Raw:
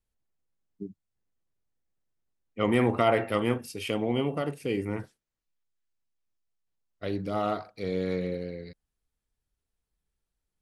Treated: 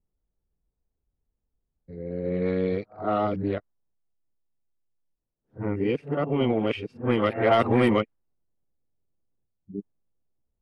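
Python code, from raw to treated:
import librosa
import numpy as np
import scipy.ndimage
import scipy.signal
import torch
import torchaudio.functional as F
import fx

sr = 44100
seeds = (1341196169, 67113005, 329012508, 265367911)

y = x[::-1].copy()
y = 10.0 ** (-14.0 / 20.0) * np.tanh(y / 10.0 ** (-14.0 / 20.0))
y = fx.env_lowpass(y, sr, base_hz=680.0, full_db=-17.5)
y = F.gain(torch.from_numpy(y), 4.5).numpy()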